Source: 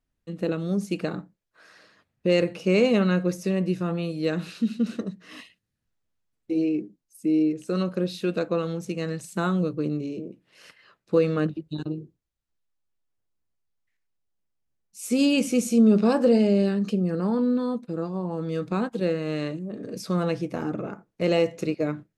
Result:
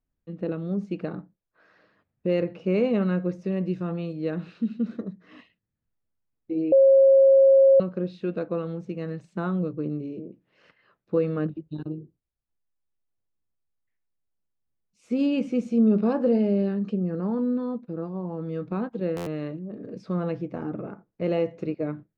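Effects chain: 3.52–4.13 high shelf 3800 Hz +9 dB; 4.86–5.27 notch 2800 Hz, Q 5; tape spacing loss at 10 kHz 33 dB; 6.72–7.8 bleep 541 Hz -10.5 dBFS; stuck buffer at 19.16, samples 512, times 8; gain -1.5 dB

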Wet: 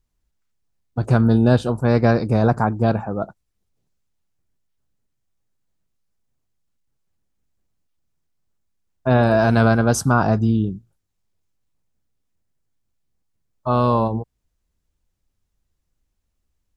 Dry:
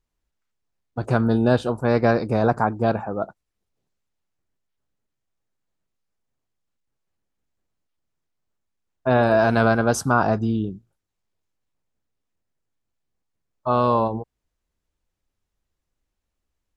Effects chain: tone controls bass +7 dB, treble +4 dB

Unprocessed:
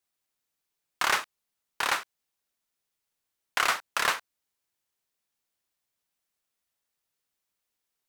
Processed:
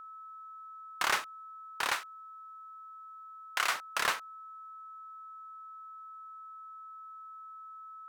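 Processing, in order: whine 1300 Hz -41 dBFS; 1.92–3.73 low shelf 430 Hz -10.5 dB; gain -4 dB

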